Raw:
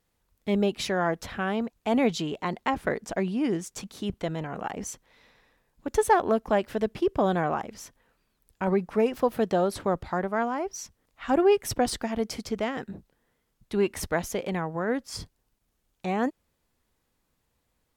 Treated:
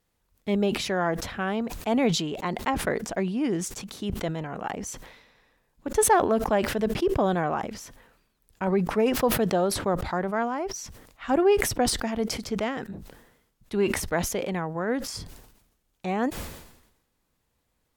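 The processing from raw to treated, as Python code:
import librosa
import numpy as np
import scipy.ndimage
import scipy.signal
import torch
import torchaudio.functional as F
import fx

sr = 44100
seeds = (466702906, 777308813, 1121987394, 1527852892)

y = fx.sustainer(x, sr, db_per_s=63.0)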